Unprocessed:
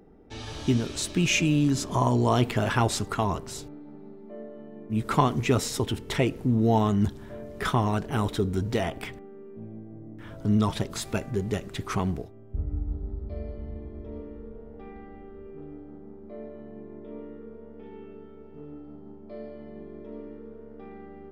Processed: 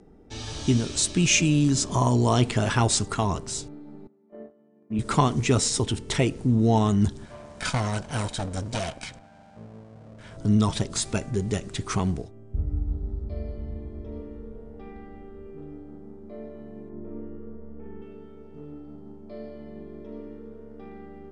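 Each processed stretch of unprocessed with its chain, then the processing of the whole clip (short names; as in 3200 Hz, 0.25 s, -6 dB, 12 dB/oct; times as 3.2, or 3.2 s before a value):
4.07–4.99 BPF 170–2600 Hz + gate -41 dBFS, range -16 dB
7.25–10.37 minimum comb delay 1.3 ms + low shelf 180 Hz -7 dB + notch 810 Hz, Q 14
16.89–18.02 LPF 1900 Hz 24 dB/oct + flutter echo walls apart 6.9 m, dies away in 0.56 s
whole clip: steep low-pass 9800 Hz 96 dB/oct; tone controls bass +3 dB, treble +9 dB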